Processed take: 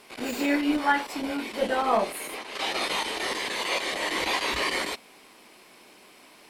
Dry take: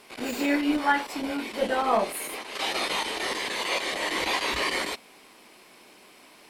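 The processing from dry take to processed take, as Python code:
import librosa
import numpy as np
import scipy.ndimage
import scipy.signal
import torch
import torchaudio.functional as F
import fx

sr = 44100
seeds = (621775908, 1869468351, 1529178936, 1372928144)

y = fx.high_shelf(x, sr, hz=8200.0, db=-5.0, at=(2.09, 2.81))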